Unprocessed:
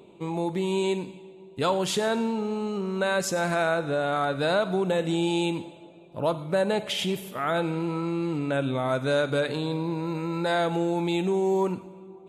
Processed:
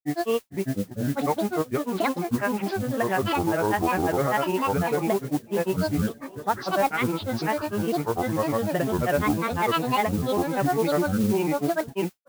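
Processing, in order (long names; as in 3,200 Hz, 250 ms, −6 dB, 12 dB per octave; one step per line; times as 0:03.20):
Butterworth low-pass 2,600 Hz 72 dB per octave
granular cloud 100 ms, grains 20 per second, spray 866 ms, pitch spread up and down by 12 semitones
noise that follows the level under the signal 18 dB
level +3 dB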